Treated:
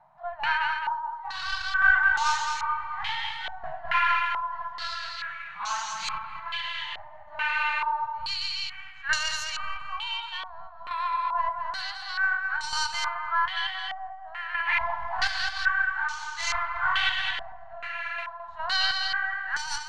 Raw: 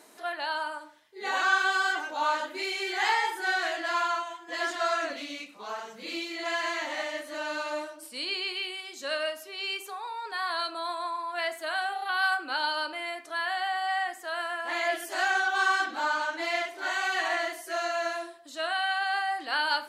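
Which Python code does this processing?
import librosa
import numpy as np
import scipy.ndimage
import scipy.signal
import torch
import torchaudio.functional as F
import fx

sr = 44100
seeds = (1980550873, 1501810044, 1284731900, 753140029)

p1 = fx.tracing_dist(x, sr, depth_ms=0.087)
p2 = scipy.signal.sosfilt(scipy.signal.ellip(3, 1.0, 40, [150.0, 890.0], 'bandstop', fs=sr, output='sos'), p1)
p3 = fx.low_shelf(p2, sr, hz=290.0, db=7.0)
p4 = fx.rider(p3, sr, range_db=10, speed_s=0.5)
p5 = p3 + (p4 * librosa.db_to_amplitude(-2.0))
p6 = fx.chopper(p5, sr, hz=0.55, depth_pct=65, duty_pct=40)
p7 = p6 + fx.echo_feedback(p6, sr, ms=214, feedback_pct=44, wet_db=-5.0, dry=0)
p8 = fx.filter_held_lowpass(p7, sr, hz=2.3, low_hz=640.0, high_hz=6300.0)
y = p8 * librosa.db_to_amplitude(-3.0)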